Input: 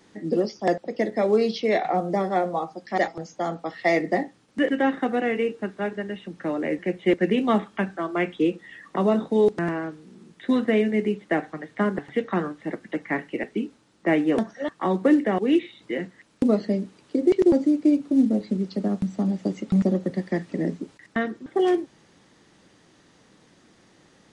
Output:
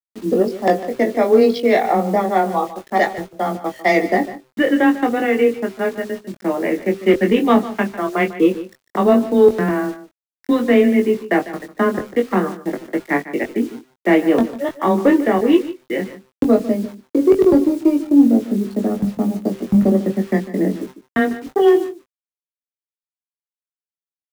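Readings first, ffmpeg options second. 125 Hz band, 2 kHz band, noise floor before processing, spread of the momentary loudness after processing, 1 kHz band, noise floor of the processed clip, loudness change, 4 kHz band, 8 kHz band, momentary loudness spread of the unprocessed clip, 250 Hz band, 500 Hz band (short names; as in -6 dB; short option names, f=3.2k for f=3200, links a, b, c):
+4.0 dB, +7.0 dB, -58 dBFS, 11 LU, +7.5 dB, under -85 dBFS, +7.0 dB, +5.5 dB, n/a, 11 LU, +6.5 dB, +7.5 dB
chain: -filter_complex "[0:a]anlmdn=25.1,afreqshift=13,acontrast=63,bandreject=f=129.4:t=h:w=4,bandreject=f=258.8:t=h:w=4,bandreject=f=388.2:t=h:w=4,bandreject=f=517.6:t=h:w=4,bandreject=f=647:t=h:w=4,acrusher=bits=6:mix=0:aa=0.000001,asplit=2[a][b];[b]adelay=21,volume=-5dB[c];[a][c]amix=inputs=2:normalize=0,aecho=1:1:149:0.178"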